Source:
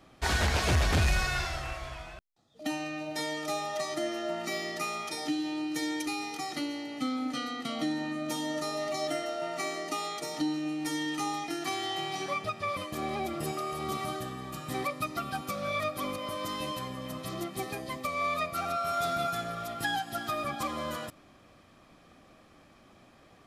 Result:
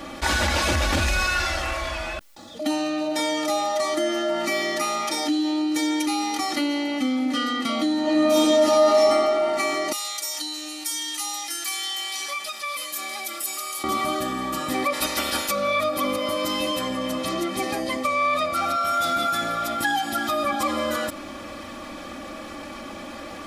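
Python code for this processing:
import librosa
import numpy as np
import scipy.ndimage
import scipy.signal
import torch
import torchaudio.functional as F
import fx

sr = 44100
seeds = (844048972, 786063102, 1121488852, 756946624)

y = fx.reverb_throw(x, sr, start_s=8.02, length_s=0.99, rt60_s=1.8, drr_db=-12.0)
y = fx.differentiator(y, sr, at=(9.92, 13.84))
y = fx.spec_clip(y, sr, under_db=24, at=(14.92, 15.5), fade=0.02)
y = fx.lowpass(y, sr, hz=11000.0, slope=12, at=(16.81, 18.63))
y = fx.low_shelf(y, sr, hz=130.0, db=-7.0)
y = y + 0.72 * np.pad(y, (int(3.5 * sr / 1000.0), 0))[:len(y)]
y = fx.env_flatten(y, sr, amount_pct=50)
y = y * 10.0 ** (-2.0 / 20.0)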